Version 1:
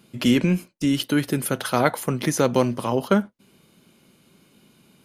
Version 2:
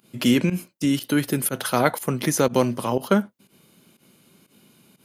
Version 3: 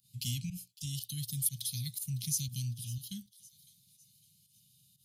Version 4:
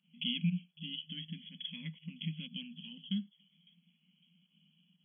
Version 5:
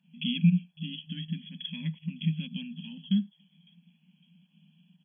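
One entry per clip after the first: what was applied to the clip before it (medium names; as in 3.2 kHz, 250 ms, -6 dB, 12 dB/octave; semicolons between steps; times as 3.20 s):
high-pass 80 Hz; treble shelf 11 kHz +9.5 dB; volume shaper 121 bpm, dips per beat 1, -18 dB, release 93 ms
elliptic band-stop 130–3700 Hz, stop band 50 dB; feedback echo behind a high-pass 556 ms, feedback 43%, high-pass 3.3 kHz, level -17 dB; Shepard-style phaser rising 0.5 Hz; trim -5 dB
FFT band-pass 160–3400 Hz; trim +8.5 dB
treble shelf 2.3 kHz -11.5 dB; comb 1.2 ms, depth 56%; trim +8.5 dB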